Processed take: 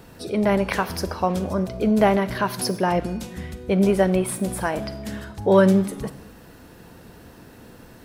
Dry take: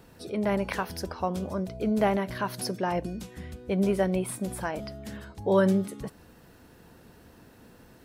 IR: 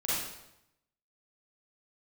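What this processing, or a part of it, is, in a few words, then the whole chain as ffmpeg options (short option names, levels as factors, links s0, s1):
saturated reverb return: -filter_complex "[0:a]asplit=2[s0][s1];[1:a]atrim=start_sample=2205[s2];[s1][s2]afir=irnorm=-1:irlink=0,asoftclip=type=tanh:threshold=0.0596,volume=0.15[s3];[s0][s3]amix=inputs=2:normalize=0,volume=2.11"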